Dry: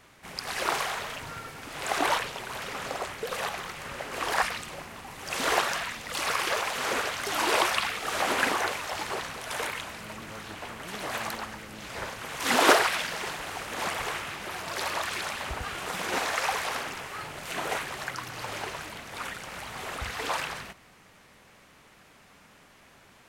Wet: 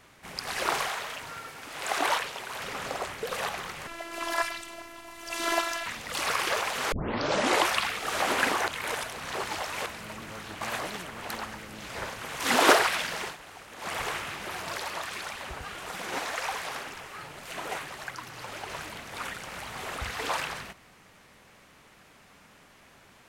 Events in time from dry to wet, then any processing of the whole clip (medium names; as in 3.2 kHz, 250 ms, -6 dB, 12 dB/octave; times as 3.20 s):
0.88–2.60 s: bass shelf 270 Hz -9.5 dB
3.87–5.86 s: robot voice 336 Hz
6.92 s: tape start 0.74 s
8.68–9.86 s: reverse
10.61–11.29 s: reverse
13.22–13.96 s: dip -10.5 dB, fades 0.15 s
14.77–18.70 s: flange 1.8 Hz, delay 0.8 ms, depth 6.8 ms, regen +62%